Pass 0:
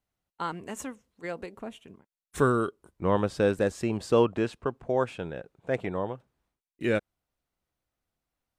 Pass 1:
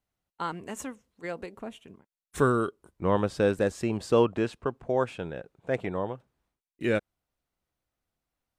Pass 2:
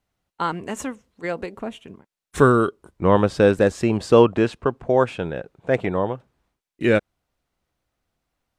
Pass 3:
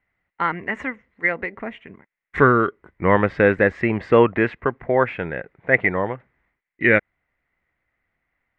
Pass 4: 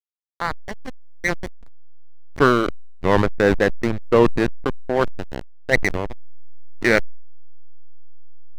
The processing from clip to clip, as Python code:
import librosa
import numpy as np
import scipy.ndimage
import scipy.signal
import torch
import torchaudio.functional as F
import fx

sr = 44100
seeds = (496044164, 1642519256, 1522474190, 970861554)

y1 = x
y2 = fx.high_shelf(y1, sr, hz=9300.0, db=-8.5)
y2 = F.gain(torch.from_numpy(y2), 8.5).numpy()
y3 = fx.lowpass_res(y2, sr, hz=2000.0, q=8.3)
y3 = F.gain(torch.from_numpy(y3), -1.5).numpy()
y4 = fx.tracing_dist(y3, sr, depth_ms=0.031)
y4 = fx.backlash(y4, sr, play_db=-13.5)
y4 = fx.sustainer(y4, sr, db_per_s=43.0)